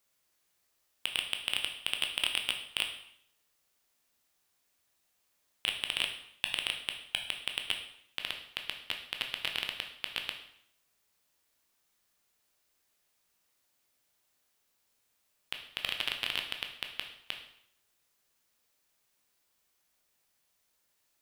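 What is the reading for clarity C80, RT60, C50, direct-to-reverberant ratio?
11.0 dB, 0.65 s, 8.0 dB, 3.5 dB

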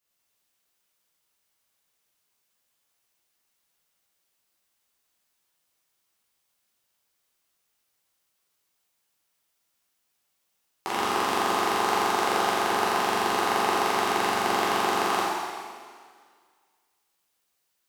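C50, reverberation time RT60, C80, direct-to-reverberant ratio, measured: −3.0 dB, 1.9 s, −0.5 dB, −8.5 dB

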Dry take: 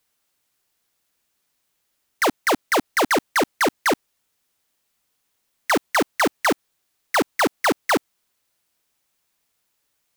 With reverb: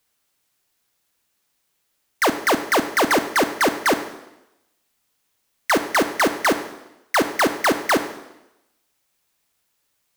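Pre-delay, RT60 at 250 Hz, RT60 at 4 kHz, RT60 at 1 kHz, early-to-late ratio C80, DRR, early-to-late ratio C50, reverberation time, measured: 21 ms, 0.90 s, 0.90 s, 0.90 s, 12.5 dB, 8.5 dB, 11.0 dB, 0.90 s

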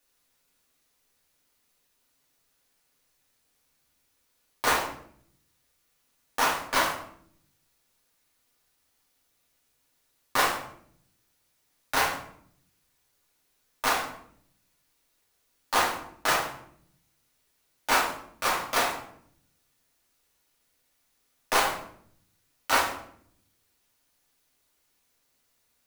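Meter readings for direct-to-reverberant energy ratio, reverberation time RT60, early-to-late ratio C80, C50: −4.0 dB, 0.65 s, 9.5 dB, 5.5 dB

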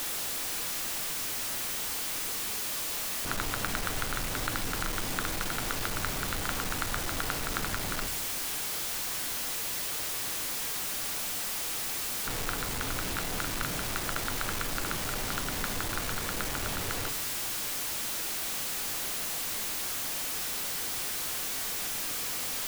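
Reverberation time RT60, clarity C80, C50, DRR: 0.50 s, 19.5 dB, 15.0 dB, 9.0 dB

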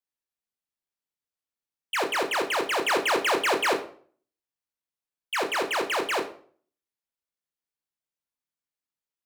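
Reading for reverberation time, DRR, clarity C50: 0.50 s, 4.5 dB, 10.5 dB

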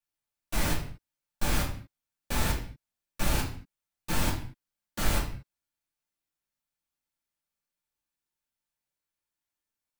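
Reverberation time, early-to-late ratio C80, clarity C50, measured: non-exponential decay, 11.0 dB, 7.0 dB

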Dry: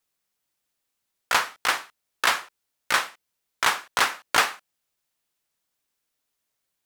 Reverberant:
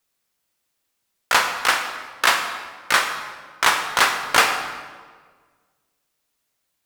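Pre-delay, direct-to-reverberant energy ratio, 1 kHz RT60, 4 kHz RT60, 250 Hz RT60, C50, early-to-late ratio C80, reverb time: 15 ms, 4.5 dB, 1.5 s, 1.1 s, 1.7 s, 7.0 dB, 8.0 dB, 1.6 s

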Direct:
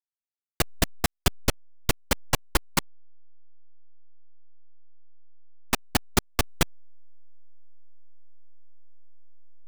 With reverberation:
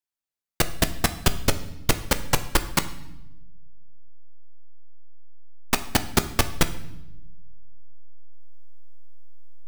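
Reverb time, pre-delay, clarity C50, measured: 0.90 s, 6 ms, 14.0 dB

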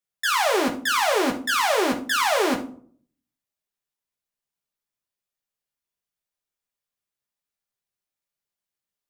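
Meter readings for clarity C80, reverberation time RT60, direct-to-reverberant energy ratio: 16.0 dB, 0.50 s, 1.0 dB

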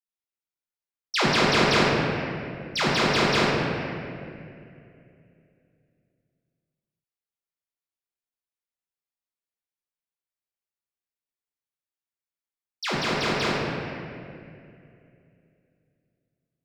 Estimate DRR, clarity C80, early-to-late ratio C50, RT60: −6.5 dB, −0.5 dB, −2.0 dB, 2.5 s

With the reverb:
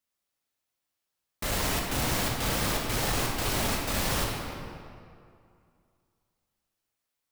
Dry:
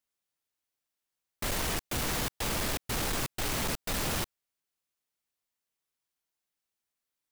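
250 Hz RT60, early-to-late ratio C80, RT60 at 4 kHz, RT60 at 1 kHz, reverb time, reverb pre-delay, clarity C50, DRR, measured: 2.4 s, 2.5 dB, 1.5 s, 2.4 s, 2.4 s, 4 ms, 1.0 dB, −2.0 dB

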